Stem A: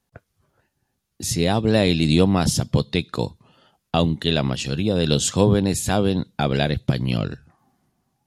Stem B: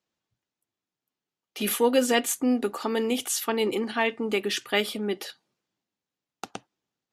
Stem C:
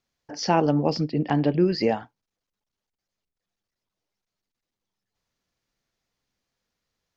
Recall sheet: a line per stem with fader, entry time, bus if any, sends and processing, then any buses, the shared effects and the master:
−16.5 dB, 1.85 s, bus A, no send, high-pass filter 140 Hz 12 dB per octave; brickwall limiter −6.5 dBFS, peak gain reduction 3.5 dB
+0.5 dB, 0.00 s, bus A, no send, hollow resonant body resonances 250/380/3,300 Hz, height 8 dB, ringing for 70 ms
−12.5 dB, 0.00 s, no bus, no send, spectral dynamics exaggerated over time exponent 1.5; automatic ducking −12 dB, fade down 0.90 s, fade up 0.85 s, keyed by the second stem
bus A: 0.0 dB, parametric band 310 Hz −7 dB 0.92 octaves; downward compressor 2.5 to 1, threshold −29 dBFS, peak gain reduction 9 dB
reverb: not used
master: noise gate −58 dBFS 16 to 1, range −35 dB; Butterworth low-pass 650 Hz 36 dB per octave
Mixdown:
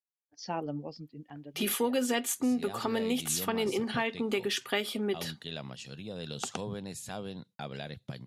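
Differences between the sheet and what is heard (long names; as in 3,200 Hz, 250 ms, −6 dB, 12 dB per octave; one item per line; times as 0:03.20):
stem A: entry 1.85 s → 1.20 s
master: missing Butterworth low-pass 650 Hz 36 dB per octave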